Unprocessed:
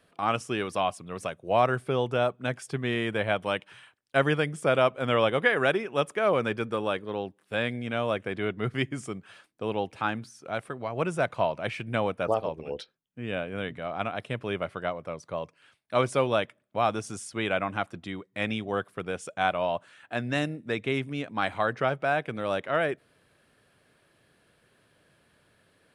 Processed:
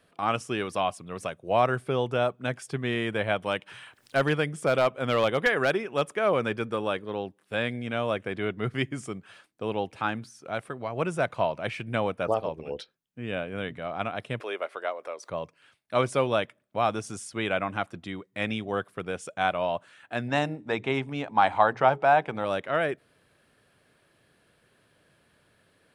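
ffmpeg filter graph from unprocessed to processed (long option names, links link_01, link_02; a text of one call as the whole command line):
ffmpeg -i in.wav -filter_complex "[0:a]asettb=1/sr,asplit=3[link_01][link_02][link_03];[link_01]atrim=end=3.514[link_04];[link_02]atrim=start=3.51:end=6.13,asetpts=PTS-STARTPTS,afade=type=in:duration=0.004:curve=qsin,afade=type=out:start_time=2.616:duration=0.004:curve=qsin,acompressor=mode=upward:threshold=-37dB:ratio=2.5:attack=3.2:release=140:knee=2.83:detection=peak,volume=15dB,asoftclip=hard,volume=-15dB[link_05];[link_03]atrim=start=6.126[link_06];[link_04][link_05]acrossfade=duration=0.004:curve1=hsin:curve2=qsin[link_07];[link_07][link_06]acrossfade=duration=0.004:curve1=qsin:curve2=hsin,asettb=1/sr,asplit=3[link_08][link_09][link_10];[link_08]atrim=end=14.404[link_11];[link_09]atrim=start=14.4:end=15.3,asetpts=PTS-STARTPTS,afade=type=in:duration=0.004:curve=qsin,afade=type=out:start_time=0.896:duration=0.004:curve=qsin,highpass=frequency=370:width=0.5412,highpass=frequency=370:width=1.3066,bandreject=frequency=3000:width=24,acompressor=mode=upward:threshold=-35dB:ratio=2.5:attack=3.2:release=140:knee=2.83:detection=peak[link_12];[link_10]atrim=start=15.296[link_13];[link_11][link_12]acrossfade=duration=0.004:curve1=hsin:curve2=qsin[link_14];[link_14][link_13]acrossfade=duration=0.004:curve1=qsin:curve2=hsin,asettb=1/sr,asplit=3[link_15][link_16][link_17];[link_15]atrim=end=20.284[link_18];[link_16]atrim=start=20.28:end=22.45,asetpts=PTS-STARTPTS,afade=type=in:duration=0.004:curve=qsin,afade=type=out:start_time=2.166:duration=0.004:curve=qsin,lowpass=frequency=8500:width=0.5412,lowpass=frequency=8500:width=1.3066,equalizer=frequency=860:width=2.4:gain=14,bandreject=frequency=60:width_type=h:width=6,bandreject=frequency=120:width_type=h:width=6,bandreject=frequency=180:width_type=h:width=6,bandreject=frequency=240:width_type=h:width=6,bandreject=frequency=300:width_type=h:width=6,bandreject=frequency=360:width_type=h:width=6,bandreject=frequency=420:width_type=h:width=6[link_19];[link_17]atrim=start=22.446[link_20];[link_18][link_19]acrossfade=duration=0.004:curve1=hsin:curve2=qsin[link_21];[link_21][link_20]acrossfade=duration=0.004:curve1=qsin:curve2=hsin" out.wav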